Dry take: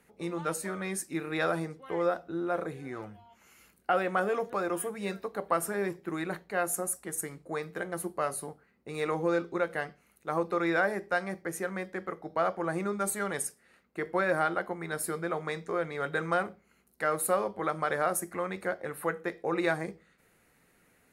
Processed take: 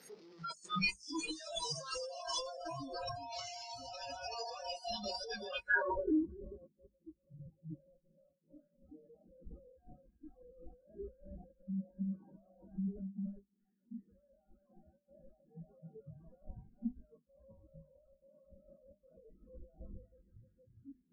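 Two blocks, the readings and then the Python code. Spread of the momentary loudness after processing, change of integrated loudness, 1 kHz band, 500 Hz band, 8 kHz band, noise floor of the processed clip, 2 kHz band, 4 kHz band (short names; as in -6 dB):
24 LU, -8.0 dB, -13.5 dB, -15.5 dB, -14.0 dB, -79 dBFS, -9.0 dB, +3.0 dB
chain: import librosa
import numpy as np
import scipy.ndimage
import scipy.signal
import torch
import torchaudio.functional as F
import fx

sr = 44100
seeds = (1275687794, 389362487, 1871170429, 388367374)

y = np.sign(x) * np.sqrt(np.mean(np.square(x)))
y = scipy.signal.sosfilt(scipy.signal.butter(2, 120.0, 'highpass', fs=sr, output='sos'), y)
y = fx.echo_swell(y, sr, ms=156, loudest=5, wet_db=-8.0)
y = np.clip(10.0 ** (31.5 / 20.0) * y, -1.0, 1.0) / 10.0 ** (31.5 / 20.0)
y = y + 10.0 ** (-5.0 / 20.0) * np.pad(y, (int(380 * sr / 1000.0), 0))[:len(y)]
y = fx.noise_reduce_blind(y, sr, reduce_db=29)
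y = fx.over_compress(y, sr, threshold_db=-47.0, ratio=-1.0)
y = fx.hum_notches(y, sr, base_hz=50, count=5)
y = fx.filter_sweep_lowpass(y, sr, from_hz=5100.0, to_hz=240.0, start_s=5.44, end_s=6.23, q=3.6)
y = fx.spectral_expand(y, sr, expansion=1.5)
y = y * 10.0 ** (7.0 / 20.0)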